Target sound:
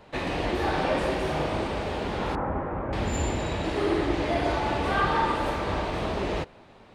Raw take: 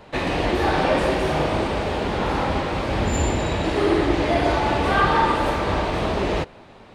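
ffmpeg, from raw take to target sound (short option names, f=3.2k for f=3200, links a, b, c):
-filter_complex "[0:a]asettb=1/sr,asplit=3[a][b][c];[a]atrim=end=2.354[d];[b]atrim=start=2.35:end=2.93,asetpts=PTS-STARTPTS,afade=t=in:d=0.004:c=qsin,afade=t=out:st=0.576:d=0.004:c=qsin,lowpass=f=1.6k:w=0.5412,lowpass=f=1.6k:w=1.3066[e];[c]atrim=start=2.926[f];[d][e]acrossfade=d=0.004:c1=hsin:c2=qsin[g];[g][f]acrossfade=d=0.004:c1=qsin:c2=hsin,volume=-6dB"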